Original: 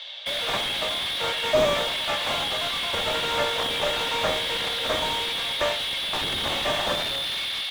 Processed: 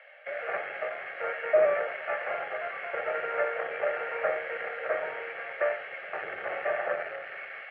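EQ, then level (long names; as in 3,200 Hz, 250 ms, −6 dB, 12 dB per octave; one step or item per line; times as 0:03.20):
high-pass filter 380 Hz 12 dB per octave
inverse Chebyshev low-pass filter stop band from 8,400 Hz, stop band 70 dB
phaser with its sweep stopped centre 980 Hz, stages 6
0.0 dB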